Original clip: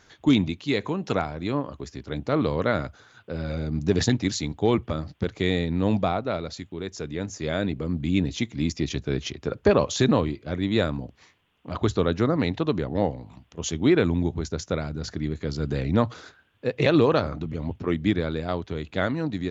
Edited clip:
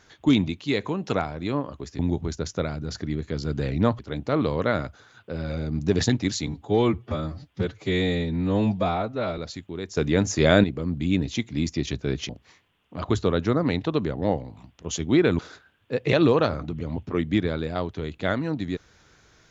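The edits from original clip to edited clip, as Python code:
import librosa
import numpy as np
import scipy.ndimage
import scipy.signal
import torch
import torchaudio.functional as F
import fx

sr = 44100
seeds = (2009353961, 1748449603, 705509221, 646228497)

y = fx.edit(x, sr, fx.stretch_span(start_s=4.47, length_s=1.94, factor=1.5),
    fx.clip_gain(start_s=7.0, length_s=0.67, db=9.5),
    fx.cut(start_s=9.32, length_s=1.7),
    fx.move(start_s=14.12, length_s=2.0, to_s=1.99), tone=tone)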